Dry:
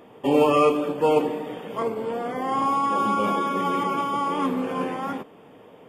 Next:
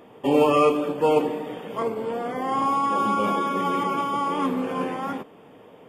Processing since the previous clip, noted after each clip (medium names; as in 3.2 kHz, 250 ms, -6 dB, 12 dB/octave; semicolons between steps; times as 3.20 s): no audible change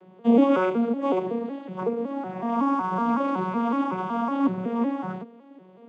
vocoder on a broken chord major triad, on F#3, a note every 186 ms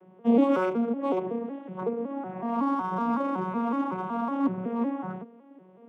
local Wiener filter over 9 samples; trim -3 dB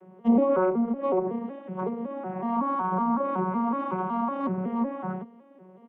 comb 5.3 ms, depth 59%; Chebyshev shaper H 4 -36 dB, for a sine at -11.5 dBFS; low-pass that closes with the level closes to 1.3 kHz, closed at -21 dBFS